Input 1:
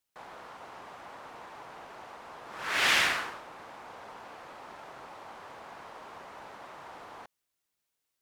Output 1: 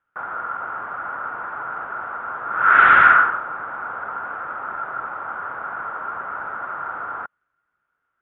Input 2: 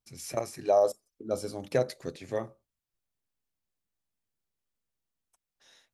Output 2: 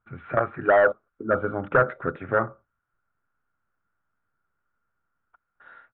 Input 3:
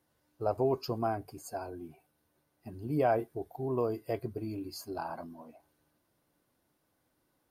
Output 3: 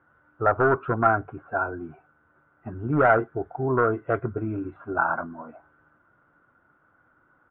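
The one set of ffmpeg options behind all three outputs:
ffmpeg -i in.wav -af "equalizer=frequency=110:width=1.2:gain=2.5,aresample=8000,asoftclip=type=hard:threshold=-24.5dB,aresample=44100,lowpass=frequency=1400:width_type=q:width=12,volume=7.5dB" out.wav

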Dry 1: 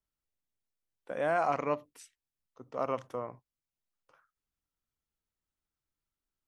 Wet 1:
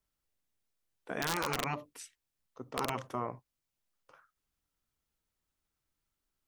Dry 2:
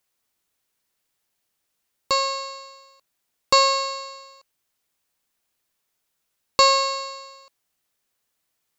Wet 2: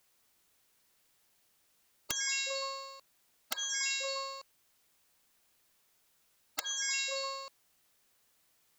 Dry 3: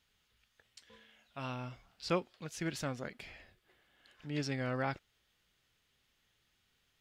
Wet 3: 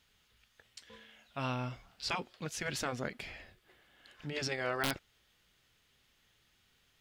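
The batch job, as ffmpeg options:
ffmpeg -i in.wav -af "afftfilt=real='re*lt(hypot(re,im),0.0891)':imag='im*lt(hypot(re,im),0.0891)':win_size=1024:overlap=0.75,aeval=exprs='(mod(21.1*val(0)+1,2)-1)/21.1':channel_layout=same,volume=5dB" out.wav

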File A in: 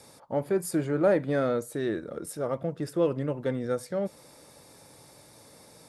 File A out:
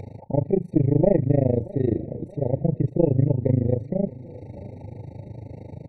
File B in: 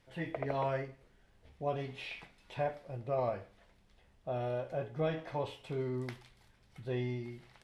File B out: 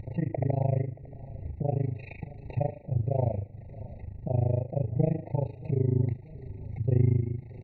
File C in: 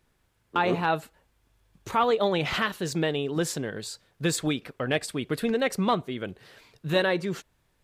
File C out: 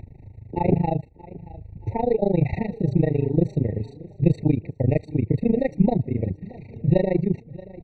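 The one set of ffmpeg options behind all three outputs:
ffmpeg -i in.wav -af "lowpass=2400,tremolo=f=26:d=0.974,equalizer=frequency=98:width=1.1:gain=13.5,acompressor=mode=upward:threshold=-36dB:ratio=2.5,aeval=exprs='0.251*(cos(1*acos(clip(val(0)/0.251,-1,1)))-cos(1*PI/2))+0.0398*(cos(2*acos(clip(val(0)/0.251,-1,1)))-cos(2*PI/2))':channel_layout=same,tiltshelf=frequency=780:gain=6.5,aecho=1:1:628|1256|1884:0.1|0.046|0.0212,afftfilt=real='re*eq(mod(floor(b*sr/1024/920),2),0)':imag='im*eq(mod(floor(b*sr/1024/920),2),0)':win_size=1024:overlap=0.75,volume=3.5dB" out.wav

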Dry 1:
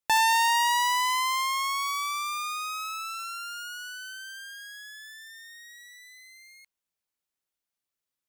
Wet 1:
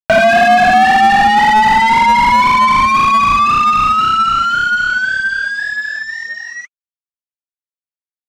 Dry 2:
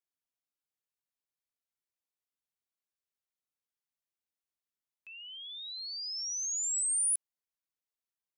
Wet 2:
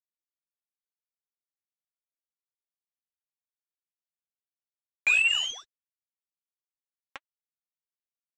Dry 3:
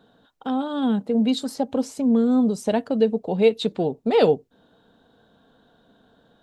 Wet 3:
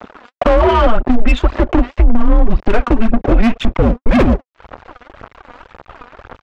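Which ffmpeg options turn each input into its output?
ffmpeg -i in.wav -filter_complex "[0:a]bandreject=frequency=680:width=12,highpass=frequency=170:width_type=q:width=0.5412,highpass=frequency=170:width_type=q:width=1.307,lowpass=frequency=2800:width_type=q:width=0.5176,lowpass=frequency=2800:width_type=q:width=0.7071,lowpass=frequency=2800:width_type=q:width=1.932,afreqshift=-220,acompressor=threshold=-33dB:ratio=3,aresample=16000,aeval=exprs='sgn(val(0))*max(abs(val(0))-0.00158,0)':channel_layout=same,aresample=44100,crystalizer=i=0.5:c=0,aphaser=in_gain=1:out_gain=1:delay=4.2:decay=0.58:speed=1.9:type=sinusoidal,asplit=2[link_01][link_02];[link_02]highpass=frequency=720:poles=1,volume=29dB,asoftclip=type=tanh:threshold=-17dB[link_03];[link_01][link_03]amix=inputs=2:normalize=0,lowpass=frequency=1300:poles=1,volume=-6dB,asubboost=boost=6.5:cutoff=86,alimiter=level_in=17.5dB:limit=-1dB:release=50:level=0:latency=1,volume=-1dB" out.wav

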